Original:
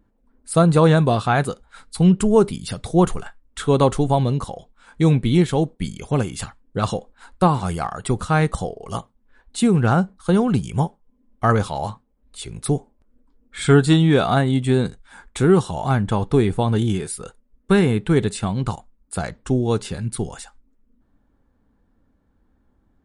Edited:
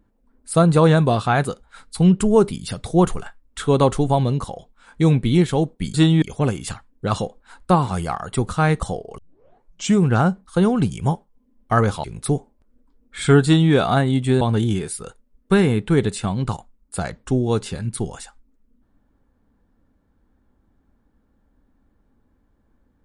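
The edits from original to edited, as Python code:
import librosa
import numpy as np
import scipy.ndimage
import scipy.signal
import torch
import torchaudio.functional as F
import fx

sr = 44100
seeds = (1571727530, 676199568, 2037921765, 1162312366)

y = fx.edit(x, sr, fx.tape_start(start_s=8.9, length_s=0.84),
    fx.cut(start_s=11.76, length_s=0.68),
    fx.duplicate(start_s=13.84, length_s=0.28, to_s=5.94),
    fx.cut(start_s=14.81, length_s=1.79), tone=tone)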